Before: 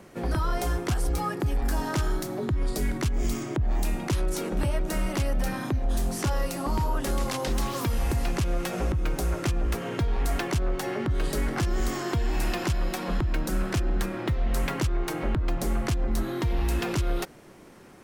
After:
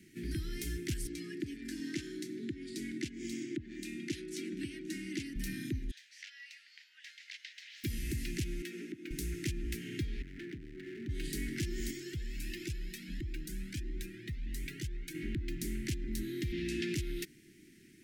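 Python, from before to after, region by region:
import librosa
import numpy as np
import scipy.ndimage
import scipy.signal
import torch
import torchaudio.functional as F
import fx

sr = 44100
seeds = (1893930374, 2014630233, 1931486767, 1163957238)

y = fx.chain(x, sr, fx.highpass(hz=170.0, slope=12),
    fx.air_absorb(metres=57.0),
    fx.comb(ms=3.4, depth=0.32), at=(1.07, 5.36))
y = fx.chain(y, sr, fx.highpass(hz=1500.0, slope=24),
    fx.air_absorb(metres=210.0), at=(5.91, 7.84))
y = fx.chain(y, sr, fx.highpass(hz=230.0, slope=24),
    fx.high_shelf(hz=3900.0, db=-11.5), at=(8.62, 9.11))
y = fx.chain(y, sr, fx.lowpass(hz=1700.0, slope=24),
    fx.clip_hard(threshold_db=-29.5),
    fx.low_shelf(hz=150.0, db=-7.0), at=(10.22, 11.09))
y = fx.chain(y, sr, fx.notch(hz=720.0, q=20.0),
    fx.clip_hard(threshold_db=-20.5),
    fx.comb_cascade(direction='rising', hz=1.5), at=(11.91, 15.15))
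y = fx.chain(y, sr, fx.bandpass_edges(low_hz=110.0, high_hz=6100.0),
    fx.doubler(ms=12.0, db=-5),
    fx.env_flatten(amount_pct=70), at=(16.52, 16.94))
y = scipy.signal.sosfilt(scipy.signal.ellip(3, 1.0, 40, [340.0, 1900.0], 'bandstop', fs=sr, output='sos'), y)
y = fx.low_shelf(y, sr, hz=94.0, db=-9.5)
y = F.gain(torch.from_numpy(y), -5.0).numpy()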